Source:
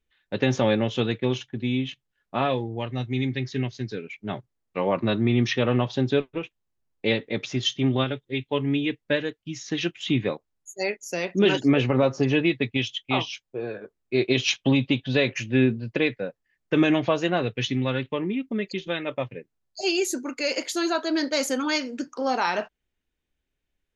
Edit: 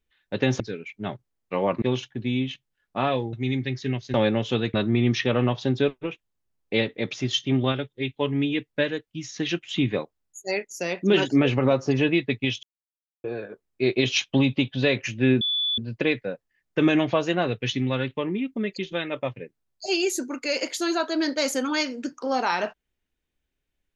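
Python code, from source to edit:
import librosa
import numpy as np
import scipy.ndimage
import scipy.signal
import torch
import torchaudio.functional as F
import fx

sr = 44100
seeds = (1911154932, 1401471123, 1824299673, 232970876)

y = fx.edit(x, sr, fx.swap(start_s=0.6, length_s=0.6, other_s=3.84, other_length_s=1.22),
    fx.cut(start_s=2.71, length_s=0.32),
    fx.silence(start_s=12.95, length_s=0.61),
    fx.insert_tone(at_s=15.73, length_s=0.37, hz=3460.0, db=-22.0), tone=tone)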